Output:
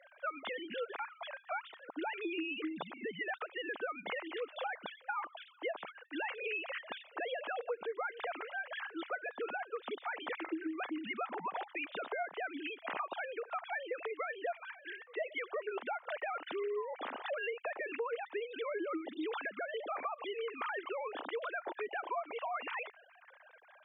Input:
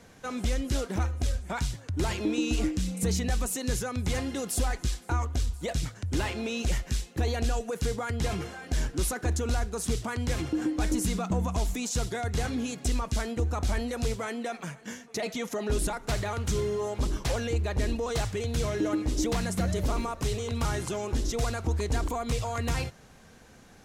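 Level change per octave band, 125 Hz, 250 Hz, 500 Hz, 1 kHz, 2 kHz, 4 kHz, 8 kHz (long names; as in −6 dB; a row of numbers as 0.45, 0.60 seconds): below −35 dB, −14.0 dB, −6.0 dB, −3.5 dB, −1.0 dB, −9.5 dB, below −40 dB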